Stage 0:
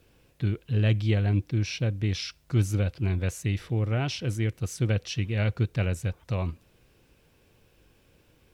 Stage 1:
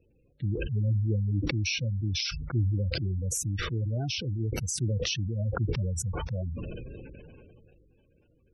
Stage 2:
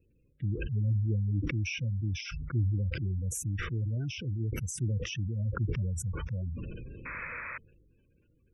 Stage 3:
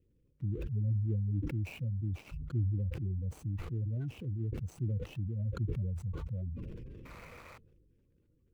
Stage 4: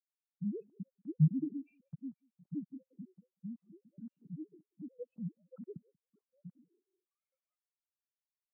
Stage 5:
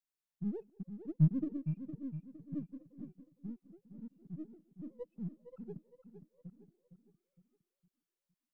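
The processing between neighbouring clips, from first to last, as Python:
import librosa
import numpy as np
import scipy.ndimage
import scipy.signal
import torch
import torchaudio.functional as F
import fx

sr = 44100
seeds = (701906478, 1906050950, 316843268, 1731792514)

y1 = fx.spec_gate(x, sr, threshold_db=-15, keep='strong')
y1 = fx.sustainer(y1, sr, db_per_s=21.0)
y1 = y1 * 10.0 ** (-4.0 / 20.0)
y2 = fx.spec_paint(y1, sr, seeds[0], shape='noise', start_s=7.05, length_s=0.53, low_hz=470.0, high_hz=2600.0, level_db=-36.0)
y2 = fx.fixed_phaser(y2, sr, hz=1800.0, stages=4)
y2 = y2 * 10.0 ** (-1.5 / 20.0)
y3 = scipy.signal.medfilt(y2, 25)
y3 = y3 * 10.0 ** (-3.0 / 20.0)
y4 = fx.sine_speech(y3, sr)
y4 = y4 + 10.0 ** (-12.5 / 20.0) * np.pad(y4, (int(186 * sr / 1000.0), 0))[:len(y4)]
y4 = fx.spectral_expand(y4, sr, expansion=2.5)
y4 = y4 * 10.0 ** (1.0 / 20.0)
y5 = np.where(y4 < 0.0, 10.0 ** (-3.0 / 20.0) * y4, y4)
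y5 = fx.echo_feedback(y5, sr, ms=461, feedback_pct=42, wet_db=-10.0)
y5 = y5 * 10.0 ** (1.0 / 20.0)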